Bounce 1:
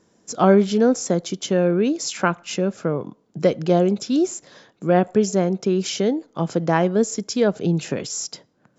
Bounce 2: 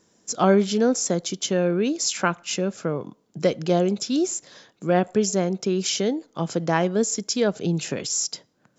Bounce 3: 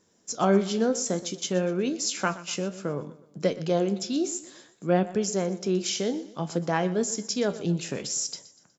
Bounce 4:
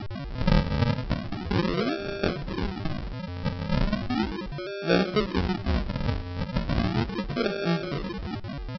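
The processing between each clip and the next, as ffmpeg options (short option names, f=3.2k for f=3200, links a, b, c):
-af "highshelf=f=2.6k:g=8,volume=-3.5dB"
-af "aecho=1:1:122|244|366|488:0.141|0.0607|0.0261|0.0112,flanger=delay=9.7:depth=8.6:regen=67:speed=0.59:shape=triangular"
-af "aeval=exprs='val(0)+0.0282*sin(2*PI*2400*n/s)':c=same,aresample=11025,acrusher=samples=21:mix=1:aa=0.000001:lfo=1:lforange=21:lforate=0.36,aresample=44100,aecho=1:1:128:0.0891"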